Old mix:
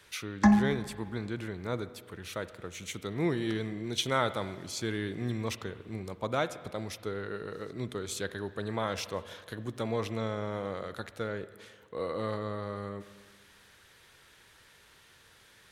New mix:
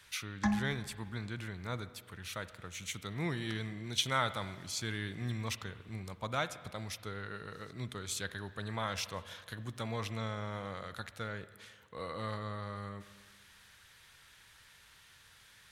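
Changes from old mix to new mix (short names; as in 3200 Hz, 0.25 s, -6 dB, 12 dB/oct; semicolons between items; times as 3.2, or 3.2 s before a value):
background -5.5 dB; master: add bell 390 Hz -11 dB 1.7 oct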